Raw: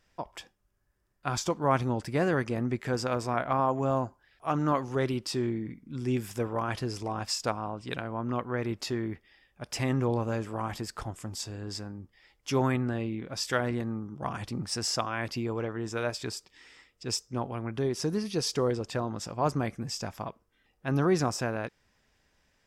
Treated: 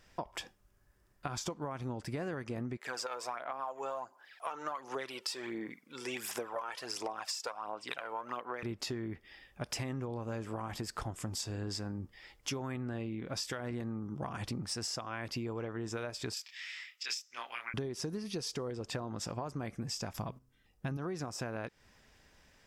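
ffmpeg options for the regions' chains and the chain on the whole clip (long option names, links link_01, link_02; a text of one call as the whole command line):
ffmpeg -i in.wav -filter_complex "[0:a]asettb=1/sr,asplit=3[link_01][link_02][link_03];[link_01]atrim=end=2.774[link_04];[link_02]atrim=start=2.77:end=8.63,asetpts=PTS-STARTPTS,afade=type=in:duration=0.004:curve=qsin,afade=type=out:start_time=5.856:duration=0.004:curve=qsin,highpass=660,aphaser=in_gain=1:out_gain=1:delay=2.3:decay=0.51:speed=1.4:type=sinusoidal[link_05];[link_03]atrim=start=8.626[link_06];[link_04][link_05]acrossfade=duration=0.004:curve1=hsin:curve2=qsin[link_07];[link_07][link_06]acrossfade=duration=0.004:curve1=qsin:curve2=hsin,asettb=1/sr,asplit=3[link_08][link_09][link_10];[link_08]atrim=end=16.344[link_11];[link_09]atrim=start=16.34:end=17.74,asetpts=PTS-STARTPTS,afade=type=in:duration=0.004:curve=qsin,afade=type=out:start_time=1.396:duration=0.004:curve=qsin,highpass=frequency=2100:width_type=q:width=1.6,equalizer=frequency=9000:width_type=o:width=0.35:gain=-10,asplit=2[link_12][link_13];[link_13]adelay=25,volume=-2.5dB[link_14];[link_12][link_14]amix=inputs=2:normalize=0,atrim=end_sample=61740[link_15];[link_10]atrim=start=17.736[link_16];[link_11][link_15]acrossfade=duration=0.004:curve1=hsin:curve2=qsin[link_17];[link_17][link_16]acrossfade=duration=0.004:curve1=qsin:curve2=hsin,asettb=1/sr,asplit=3[link_18][link_19][link_20];[link_18]atrim=end=20.134[link_21];[link_19]atrim=start=20.13:end=20.97,asetpts=PTS-STARTPTS,afade=type=in:duration=0.004:curve=qsin,afade=type=out:start_time=0.836:duration=0.004:curve=qsin,bandreject=frequency=128.7:width_type=h:width=4,bandreject=frequency=257.4:width_type=h:width=4,bandreject=frequency=386.1:width_type=h:width=4,agate=range=-10dB:threshold=-59dB:ratio=16:release=100:detection=peak,bass=frequency=250:gain=8,treble=frequency=4000:gain=6[link_22];[link_20]atrim=start=20.966[link_23];[link_21][link_22]acrossfade=duration=0.004:curve1=hsin:curve2=qsin[link_24];[link_24][link_23]acrossfade=duration=0.004:curve1=qsin:curve2=hsin,alimiter=limit=-21.5dB:level=0:latency=1:release=275,acompressor=threshold=-41dB:ratio=12,volume=6dB" out.wav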